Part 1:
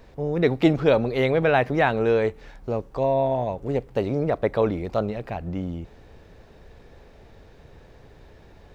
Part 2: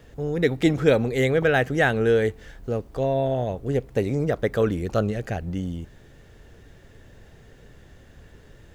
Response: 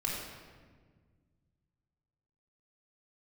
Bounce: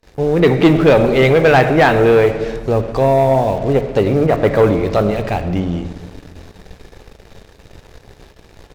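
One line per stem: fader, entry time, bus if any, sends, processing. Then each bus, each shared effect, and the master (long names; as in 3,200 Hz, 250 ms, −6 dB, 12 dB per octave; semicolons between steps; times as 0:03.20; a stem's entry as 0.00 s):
+1.0 dB, 0.00 s, send −10.5 dB, noise gate with hold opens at −40 dBFS; treble cut that deepens with the level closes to 2,700 Hz, closed at −21 dBFS; high-shelf EQ 3,800 Hz +11.5 dB
−13.5 dB, 13 ms, no send, Butterworth high-pass 570 Hz 36 dB per octave; bit reduction 6 bits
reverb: on, RT60 1.6 s, pre-delay 3 ms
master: leveller curve on the samples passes 2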